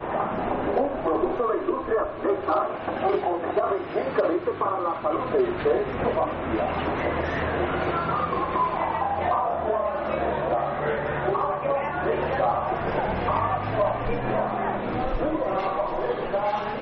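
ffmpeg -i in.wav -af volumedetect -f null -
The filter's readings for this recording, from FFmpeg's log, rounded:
mean_volume: -25.2 dB
max_volume: -13.8 dB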